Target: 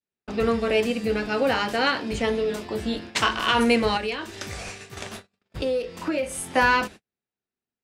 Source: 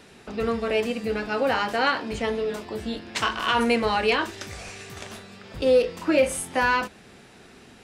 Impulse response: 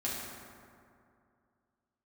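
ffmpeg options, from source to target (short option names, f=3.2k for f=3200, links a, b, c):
-filter_complex "[0:a]agate=range=-48dB:threshold=-39dB:ratio=16:detection=peak,asettb=1/sr,asplit=3[a][b][c];[a]atrim=end=3.974[d];[b]atrim=start=3.97:end=6.53,asetpts=PTS-STARTPTS,afade=t=in:d=0.004:c=qsin,afade=t=out:st=2.556:d=0.004:c=qsin,acompressor=threshold=-31dB:ratio=2.5[e];[c]atrim=start=6.526[f];[d][e]acrossfade=d=0.004:c1=hsin:c2=qsin[g];[g][f]acrossfade=d=0.004:c1=qsin:c2=hsin,adynamicequalizer=threshold=0.0141:dfrequency=980:dqfactor=0.72:tfrequency=980:tqfactor=0.72:attack=5:release=100:ratio=0.375:range=3:mode=cutabove:tftype=bell,volume=3.5dB"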